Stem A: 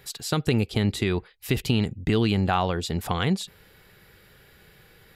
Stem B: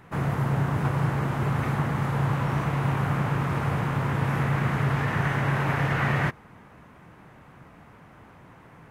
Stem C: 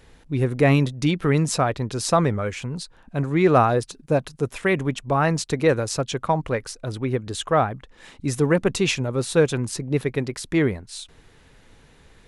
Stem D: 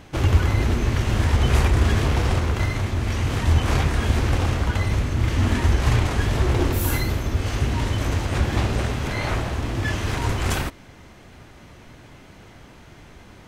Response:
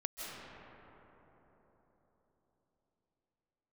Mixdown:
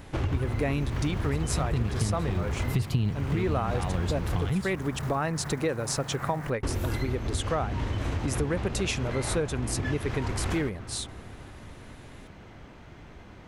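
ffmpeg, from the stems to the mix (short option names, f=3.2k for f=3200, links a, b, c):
-filter_complex "[0:a]equalizer=f=120:t=o:w=1.5:g=13.5,adelay=1250,volume=2.5dB[a];[1:a]lowpass=1.7k,acrusher=bits=4:mode=log:mix=0:aa=0.000001,adelay=200,volume=-8dB[b];[2:a]highshelf=f=10k:g=9,volume=0dB,asplit=2[c][d];[3:a]lowpass=f=2.8k:p=1,volume=-3dB,asplit=3[e][f][g];[e]atrim=end=4.5,asetpts=PTS-STARTPTS,afade=t=out:st=4.496:d=0.004:c=hsin[h];[f]atrim=start=4.5:end=6.63,asetpts=PTS-STARTPTS,volume=0[i];[g]atrim=start=6.63,asetpts=PTS-STARTPTS,afade=t=in:d=0.004:c=hsin[j];[h][i][j]concat=n=3:v=0:a=1,asplit=2[k][l];[l]volume=-15dB[m];[d]apad=whole_len=282241[n];[a][n]sidechaincompress=threshold=-26dB:ratio=3:attack=8.6:release=374[o];[4:a]atrim=start_sample=2205[p];[m][p]afir=irnorm=-1:irlink=0[q];[o][b][c][k][q]amix=inputs=5:normalize=0,acompressor=threshold=-26dB:ratio=4"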